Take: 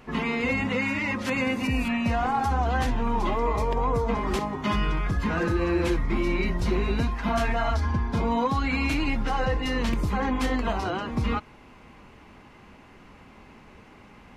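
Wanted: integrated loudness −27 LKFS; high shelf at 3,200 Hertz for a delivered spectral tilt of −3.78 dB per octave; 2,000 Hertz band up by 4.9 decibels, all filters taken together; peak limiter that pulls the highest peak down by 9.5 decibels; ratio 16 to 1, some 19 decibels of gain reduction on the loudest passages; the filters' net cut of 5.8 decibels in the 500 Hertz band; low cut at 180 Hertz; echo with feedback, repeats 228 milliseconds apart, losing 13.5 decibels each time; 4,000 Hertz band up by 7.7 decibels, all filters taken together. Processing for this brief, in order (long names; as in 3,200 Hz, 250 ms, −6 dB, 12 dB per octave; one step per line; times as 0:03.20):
high-pass filter 180 Hz
parametric band 500 Hz −8 dB
parametric band 2,000 Hz +3 dB
high-shelf EQ 3,200 Hz +3.5 dB
parametric band 4,000 Hz +7 dB
downward compressor 16 to 1, threshold −40 dBFS
brickwall limiter −36 dBFS
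repeating echo 228 ms, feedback 21%, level −13.5 dB
level +17.5 dB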